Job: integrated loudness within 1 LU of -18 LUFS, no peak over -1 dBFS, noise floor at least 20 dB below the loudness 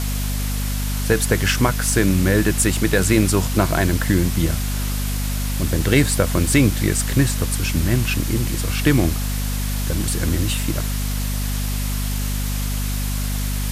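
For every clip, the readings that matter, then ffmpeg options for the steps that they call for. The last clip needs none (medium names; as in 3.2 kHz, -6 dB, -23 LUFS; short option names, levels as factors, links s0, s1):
hum 50 Hz; highest harmonic 250 Hz; hum level -20 dBFS; noise floor -23 dBFS; noise floor target -41 dBFS; loudness -20.5 LUFS; peak level -3.0 dBFS; loudness target -18.0 LUFS
-> -af "bandreject=f=50:t=h:w=6,bandreject=f=100:t=h:w=6,bandreject=f=150:t=h:w=6,bandreject=f=200:t=h:w=6,bandreject=f=250:t=h:w=6"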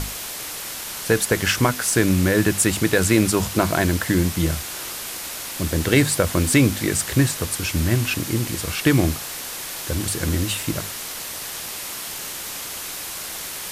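hum not found; noise floor -32 dBFS; noise floor target -42 dBFS
-> -af "afftdn=nr=10:nf=-32"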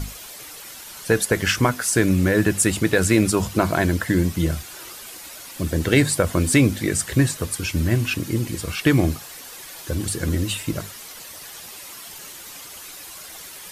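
noise floor -39 dBFS; noise floor target -41 dBFS
-> -af "afftdn=nr=6:nf=-39"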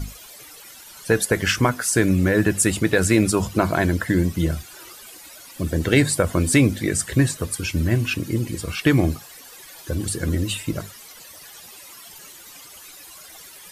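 noise floor -43 dBFS; loudness -21.0 LUFS; peak level -4.5 dBFS; loudness target -18.0 LUFS
-> -af "volume=1.41"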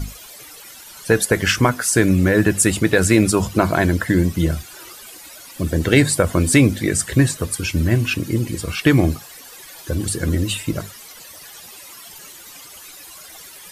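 loudness -18.0 LUFS; peak level -1.5 dBFS; noise floor -40 dBFS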